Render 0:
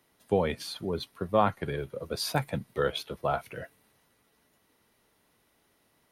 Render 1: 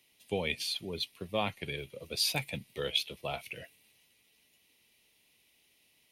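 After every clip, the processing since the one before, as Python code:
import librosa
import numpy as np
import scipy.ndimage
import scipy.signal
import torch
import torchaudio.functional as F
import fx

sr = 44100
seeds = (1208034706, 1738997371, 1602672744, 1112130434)

y = fx.high_shelf_res(x, sr, hz=1900.0, db=9.5, q=3.0)
y = F.gain(torch.from_numpy(y), -7.5).numpy()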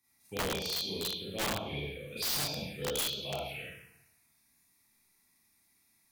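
y = fx.rev_schroeder(x, sr, rt60_s=0.98, comb_ms=28, drr_db=-9.5)
y = fx.env_phaser(y, sr, low_hz=500.0, high_hz=2000.0, full_db=-22.5)
y = (np.mod(10.0 ** (19.0 / 20.0) * y + 1.0, 2.0) - 1.0) / 10.0 ** (19.0 / 20.0)
y = F.gain(torch.from_numpy(y), -7.5).numpy()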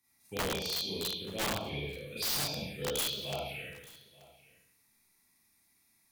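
y = x + 10.0 ** (-21.5 / 20.0) * np.pad(x, (int(882 * sr / 1000.0), 0))[:len(x)]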